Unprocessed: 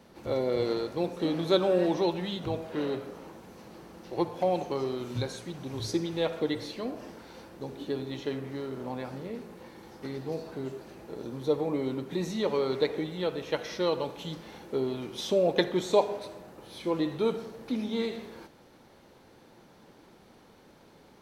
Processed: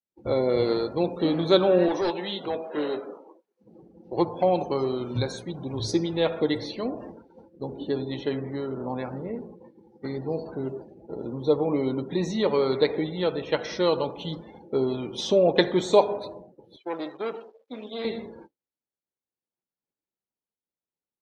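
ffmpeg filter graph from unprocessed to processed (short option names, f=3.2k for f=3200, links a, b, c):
-filter_complex "[0:a]asettb=1/sr,asplit=3[a][b][c];[a]atrim=end=1.884[d];[b]atrim=start=1.88:end=3.61,asetpts=PTS-STARTPTS,afade=t=in:d=0.004:c=qsin,afade=t=out:st=1.726:d=0.004:c=qsin,highpass=320,asplit=2[e][f];[f]adelay=20,volume=-12dB[g];[e][g]amix=inputs=2:normalize=0,atrim=end_sample=76293,asoftclip=type=hard:threshold=-26.5dB[h];[c]atrim=start=3.606[i];[d][h]acrossfade=d=0.004:c1=hsin:c2=qsin[j];[j][i]acrossfade=d=0.004:c1=qsin:c2=hsin,asettb=1/sr,asplit=3[k][l][m];[k]atrim=end=16.764[n];[l]atrim=start=16.76:end=18.05,asetpts=PTS-STARTPTS,afade=t=in:d=0.004:c=qsin,afade=t=out:st=1.286:d=0.004:c=qsin,acrusher=bits=8:dc=4:mix=0:aa=0.000001,aeval=exprs='(tanh(25.1*val(0)+0.8)-tanh(0.8))/25.1':c=same,highpass=380,lowpass=5.1k[o];[m]atrim=start=18.046[p];[n][o]acrossfade=d=0.004:c1=hsin:c2=qsin[q];[q][p]acrossfade=d=0.004:c1=qsin:c2=hsin,agate=range=-33dB:threshold=-42dB:ratio=3:detection=peak,afftdn=nr=28:nf=-48,volume=5dB"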